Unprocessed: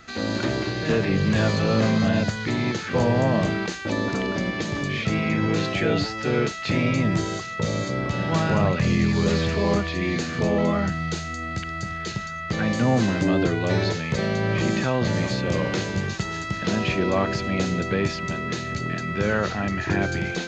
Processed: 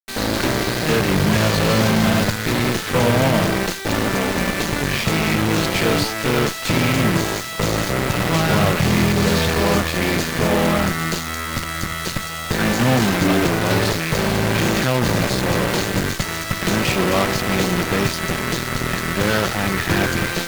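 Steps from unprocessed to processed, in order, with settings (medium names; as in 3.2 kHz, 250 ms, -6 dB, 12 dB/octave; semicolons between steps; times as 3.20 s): word length cut 6-bit, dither none; Chebyshev shaper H 8 -12 dB, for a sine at -11 dBFS; trim +3 dB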